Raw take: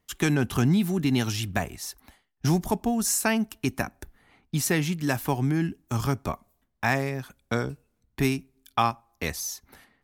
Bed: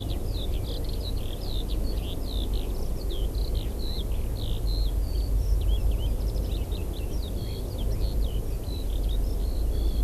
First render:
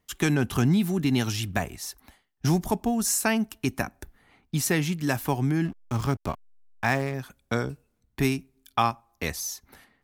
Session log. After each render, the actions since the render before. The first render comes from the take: 5.65–7.14 s: hysteresis with a dead band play -34.5 dBFS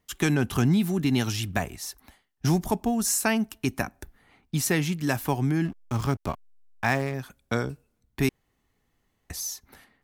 8.29–9.30 s: room tone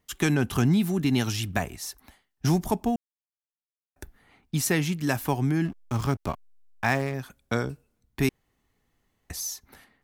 2.96–3.96 s: mute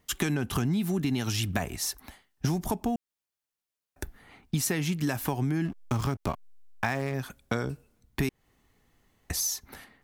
in parallel at -1 dB: peak limiter -17 dBFS, peak gain reduction 8 dB; on the sum: compression 6:1, threshold -25 dBFS, peak gain reduction 11 dB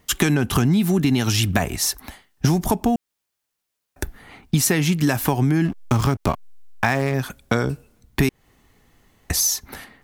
trim +9.5 dB; peak limiter -2 dBFS, peak gain reduction 1 dB

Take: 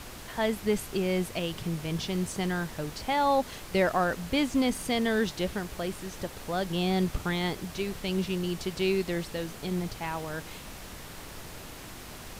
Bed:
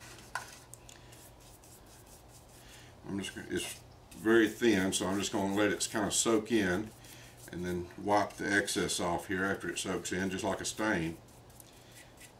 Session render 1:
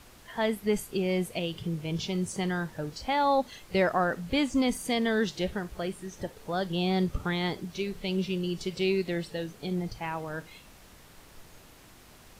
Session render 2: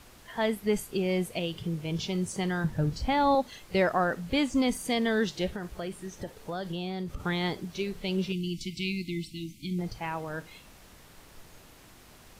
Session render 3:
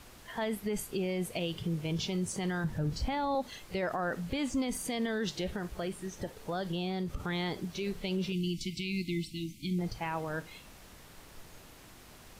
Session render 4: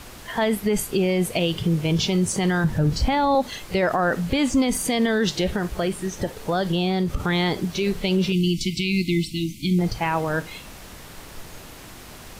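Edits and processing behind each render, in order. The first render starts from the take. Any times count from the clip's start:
noise print and reduce 10 dB
2.64–3.35 s: tone controls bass +13 dB, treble -1 dB; 5.52–7.21 s: compression, threshold -30 dBFS; 8.32–9.79 s: brick-wall FIR band-stop 360–2000 Hz
peak limiter -24.5 dBFS, peak gain reduction 11 dB
trim +12 dB

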